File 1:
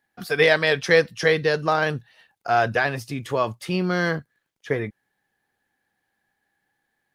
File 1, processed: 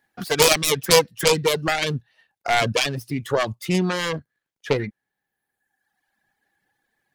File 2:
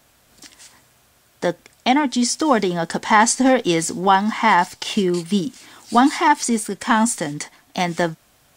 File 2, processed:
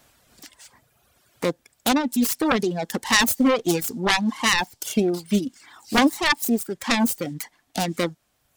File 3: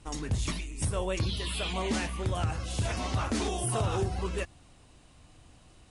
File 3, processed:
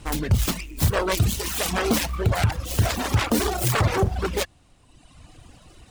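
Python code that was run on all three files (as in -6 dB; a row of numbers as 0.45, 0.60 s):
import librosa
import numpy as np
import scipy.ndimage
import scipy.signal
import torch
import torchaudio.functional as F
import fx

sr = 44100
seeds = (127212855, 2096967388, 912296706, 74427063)

y = fx.self_delay(x, sr, depth_ms=0.59)
y = fx.dynamic_eq(y, sr, hz=1700.0, q=0.8, threshold_db=-32.0, ratio=4.0, max_db=-6)
y = fx.dereverb_blind(y, sr, rt60_s=1.3)
y = y * 10.0 ** (-24 / 20.0) / np.sqrt(np.mean(np.square(y)))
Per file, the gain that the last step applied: +4.5, -0.5, +11.0 dB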